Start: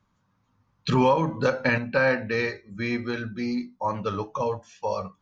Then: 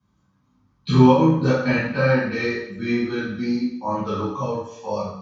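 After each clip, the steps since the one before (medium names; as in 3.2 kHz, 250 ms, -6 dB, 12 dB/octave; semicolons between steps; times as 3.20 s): reverberation RT60 0.70 s, pre-delay 3 ms, DRR -11.5 dB; trim -18 dB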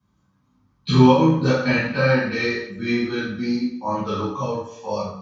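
dynamic bell 4.1 kHz, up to +5 dB, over -40 dBFS, Q 0.72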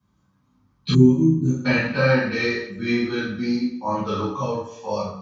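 time-frequency box 0.95–1.66 s, 400–6000 Hz -27 dB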